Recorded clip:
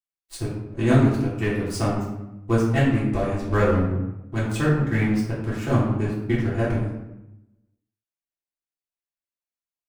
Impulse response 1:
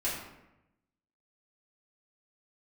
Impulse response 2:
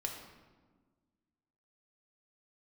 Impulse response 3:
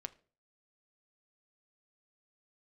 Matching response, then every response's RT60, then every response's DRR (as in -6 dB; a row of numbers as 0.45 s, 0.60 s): 1; 0.90 s, 1.5 s, 0.40 s; -9.5 dB, 1.5 dB, 10.5 dB